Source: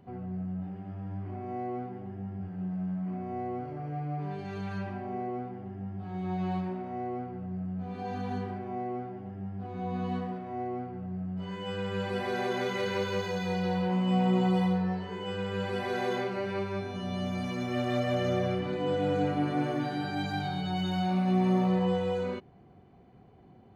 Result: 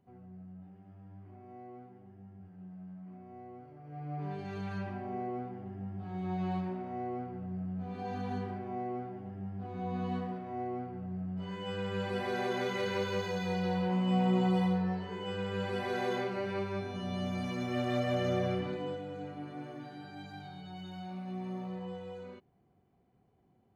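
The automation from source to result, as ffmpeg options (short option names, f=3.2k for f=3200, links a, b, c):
-af "volume=-2.5dB,afade=t=in:st=3.84:d=0.42:silence=0.266073,afade=t=out:st=18.6:d=0.44:silence=0.266073"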